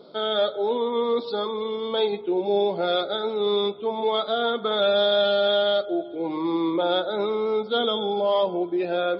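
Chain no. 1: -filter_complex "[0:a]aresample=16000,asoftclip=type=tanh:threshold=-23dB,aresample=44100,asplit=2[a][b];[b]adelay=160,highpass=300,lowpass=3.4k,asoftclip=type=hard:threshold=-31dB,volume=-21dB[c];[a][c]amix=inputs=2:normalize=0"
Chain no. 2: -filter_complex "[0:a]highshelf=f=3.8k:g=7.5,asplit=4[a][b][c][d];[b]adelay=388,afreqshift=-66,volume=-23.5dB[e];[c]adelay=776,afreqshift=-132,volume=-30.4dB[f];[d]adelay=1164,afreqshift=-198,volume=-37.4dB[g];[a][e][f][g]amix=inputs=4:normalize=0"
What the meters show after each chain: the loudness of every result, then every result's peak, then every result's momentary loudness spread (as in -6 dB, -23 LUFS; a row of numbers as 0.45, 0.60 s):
-28.0, -23.0 LUFS; -21.0, -8.0 dBFS; 4, 7 LU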